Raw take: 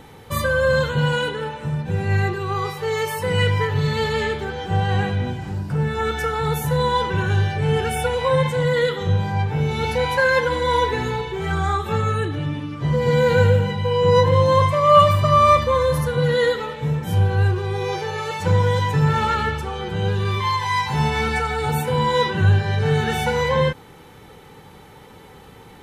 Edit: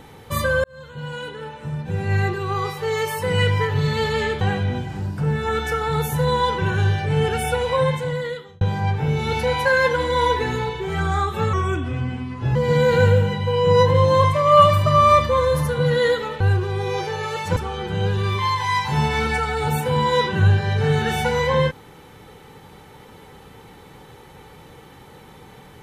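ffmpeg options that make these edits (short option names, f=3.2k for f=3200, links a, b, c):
-filter_complex "[0:a]asplit=8[a][b][c][d][e][f][g][h];[a]atrim=end=0.64,asetpts=PTS-STARTPTS,afade=t=out:st=0.636:d=0.004:c=hsin[i];[b]atrim=start=0.64:end=4.412,asetpts=PTS-STARTPTS,afade=t=in:d=1.65[j];[c]atrim=start=4.928:end=9.13,asetpts=PTS-STARTPTS,afade=t=out:st=3.312:d=0.89[k];[d]atrim=start=9.13:end=12.054,asetpts=PTS-STARTPTS,afade=t=in:d=0.004:c=hsin[l];[e]atrim=start=12.05:end=12.93,asetpts=PTS-STARTPTS,asetrate=37926,aresample=44100[m];[f]atrim=start=12.926:end=16.782[n];[g]atrim=start=17.348:end=18.512[o];[h]atrim=start=19.578[p];[i][j]concat=n=2:v=0:a=1[q];[k][l]concat=n=2:v=0:a=1[r];[q][r]acrossfade=d=0.004:c1=hsin:c2=hsin[s];[s][m]acrossfade=d=0.004:c1=hsin:c2=hsin[t];[t][n]acrossfade=d=0.004:c1=hsin:c2=hsin[u];[u][o]acrossfade=d=0.004:c1=hsin:c2=hsin[v];[v][p]acrossfade=d=0.004:c1=hsin:c2=hsin"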